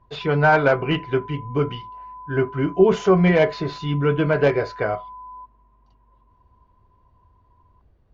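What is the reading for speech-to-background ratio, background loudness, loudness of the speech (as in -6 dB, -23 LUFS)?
18.5 dB, -39.0 LUFS, -20.5 LUFS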